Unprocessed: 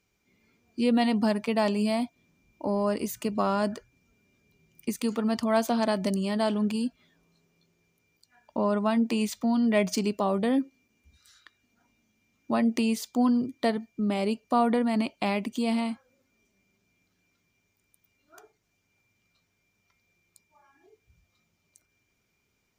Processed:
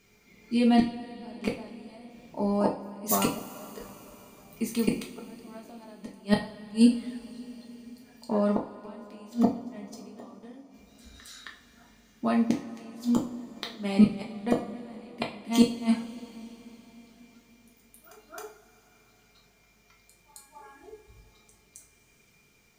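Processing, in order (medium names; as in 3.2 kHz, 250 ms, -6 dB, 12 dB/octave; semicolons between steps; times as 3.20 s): reverse echo 267 ms -11.5 dB; inverted gate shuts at -20 dBFS, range -35 dB; two-slope reverb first 0.34 s, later 4.6 s, from -22 dB, DRR -0.5 dB; trim +8 dB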